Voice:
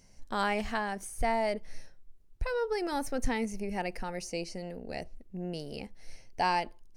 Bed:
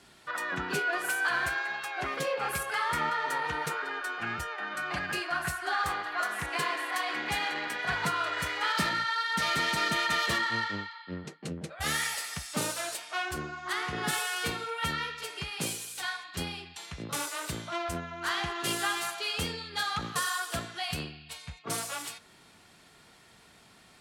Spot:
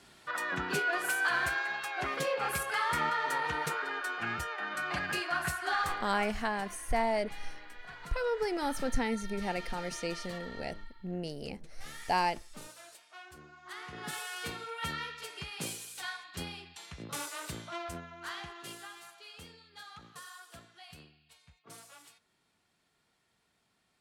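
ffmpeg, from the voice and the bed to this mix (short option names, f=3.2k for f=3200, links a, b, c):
-filter_complex "[0:a]adelay=5700,volume=-0.5dB[a];[1:a]volume=11.5dB,afade=t=out:st=5.76:d=0.59:silence=0.149624,afade=t=in:st=13.38:d=1.48:silence=0.237137,afade=t=out:st=17.59:d=1.3:silence=0.223872[b];[a][b]amix=inputs=2:normalize=0"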